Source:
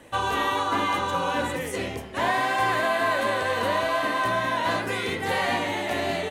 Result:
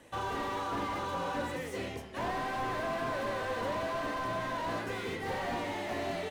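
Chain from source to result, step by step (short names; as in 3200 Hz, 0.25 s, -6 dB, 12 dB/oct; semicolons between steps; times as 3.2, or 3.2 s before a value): bell 5500 Hz +4 dB; slew limiter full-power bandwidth 55 Hz; gain -7.5 dB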